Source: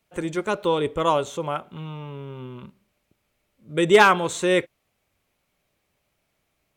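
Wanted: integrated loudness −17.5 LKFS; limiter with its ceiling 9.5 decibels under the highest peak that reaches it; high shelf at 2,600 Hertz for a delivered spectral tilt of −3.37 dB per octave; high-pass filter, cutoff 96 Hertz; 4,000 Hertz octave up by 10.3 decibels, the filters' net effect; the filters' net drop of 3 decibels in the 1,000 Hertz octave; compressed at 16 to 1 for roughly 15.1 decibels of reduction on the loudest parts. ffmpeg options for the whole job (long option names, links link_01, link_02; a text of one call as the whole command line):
ffmpeg -i in.wav -af "highpass=96,equalizer=frequency=1000:width_type=o:gain=-5.5,highshelf=frequency=2600:gain=8,equalizer=frequency=4000:width_type=o:gain=7,acompressor=threshold=-23dB:ratio=16,volume=15dB,alimiter=limit=-5.5dB:level=0:latency=1" out.wav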